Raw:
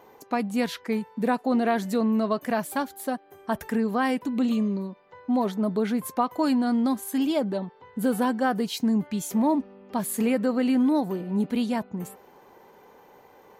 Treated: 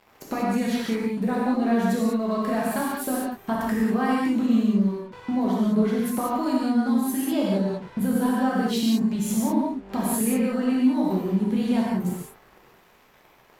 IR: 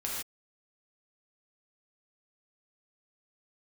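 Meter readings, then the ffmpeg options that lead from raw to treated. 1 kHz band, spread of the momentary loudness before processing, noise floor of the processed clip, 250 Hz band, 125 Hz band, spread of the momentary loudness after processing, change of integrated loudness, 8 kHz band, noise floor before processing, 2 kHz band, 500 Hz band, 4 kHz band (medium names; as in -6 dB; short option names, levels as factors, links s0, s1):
0.0 dB, 9 LU, -56 dBFS, +2.5 dB, +5.5 dB, 7 LU, +2.0 dB, +4.0 dB, -54 dBFS, +0.5 dB, 0.0 dB, +1.5 dB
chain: -filter_complex "[0:a]lowshelf=f=160:g=9,aeval=exprs='sgn(val(0))*max(abs(val(0))-0.00473,0)':c=same,acompressor=threshold=0.0141:ratio=4[s0];[1:a]atrim=start_sample=2205,asetrate=35280,aresample=44100[s1];[s0][s1]afir=irnorm=-1:irlink=0,volume=2.66"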